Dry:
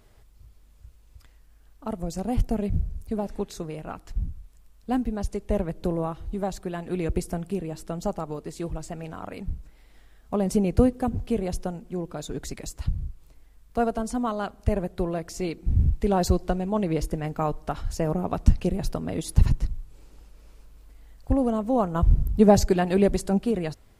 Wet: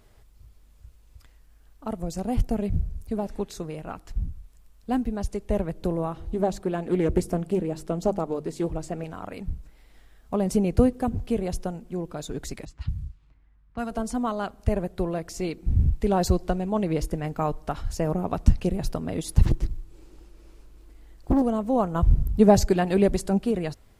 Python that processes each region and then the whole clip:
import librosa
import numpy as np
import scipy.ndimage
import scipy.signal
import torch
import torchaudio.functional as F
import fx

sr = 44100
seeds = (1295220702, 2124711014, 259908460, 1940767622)

y = fx.chain(x, sr, fx.peak_eq(hz=400.0, db=6.0, octaves=2.3),
    fx.hum_notches(base_hz=50, count=5),
    fx.doppler_dist(depth_ms=0.26), at=(6.13, 9.04))
y = fx.chain(y, sr, fx.env_lowpass(base_hz=1300.0, full_db=-22.5),
    fx.highpass(hz=43.0, slope=12),
    fx.peak_eq(hz=500.0, db=-13.0, octaves=1.5), at=(12.65, 13.91))
y = fx.chain(y, sr, fx.peak_eq(hz=340.0, db=15.0, octaves=0.26),
    fx.quant_float(bits=6),
    fx.doppler_dist(depth_ms=0.98), at=(19.45, 21.42))